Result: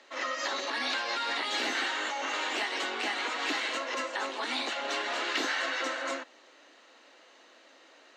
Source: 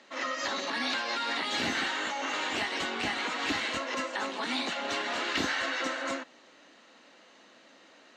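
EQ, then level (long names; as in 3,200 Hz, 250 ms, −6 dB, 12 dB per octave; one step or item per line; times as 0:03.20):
high-pass filter 300 Hz 24 dB per octave
0.0 dB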